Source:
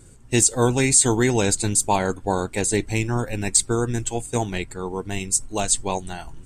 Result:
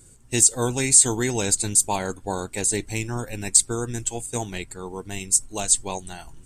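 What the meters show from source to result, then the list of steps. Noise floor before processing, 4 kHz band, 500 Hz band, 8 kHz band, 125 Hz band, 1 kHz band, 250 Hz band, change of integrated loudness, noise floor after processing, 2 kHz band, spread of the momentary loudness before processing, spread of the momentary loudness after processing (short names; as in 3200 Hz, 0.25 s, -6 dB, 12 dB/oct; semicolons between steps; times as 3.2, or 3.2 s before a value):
-45 dBFS, -1.0 dB, -5.5 dB, +2.0 dB, -5.5 dB, -5.0 dB, -5.5 dB, +0.5 dB, -50 dBFS, -4.0 dB, 13 LU, 18 LU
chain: high shelf 4800 Hz +10 dB; gain -5.5 dB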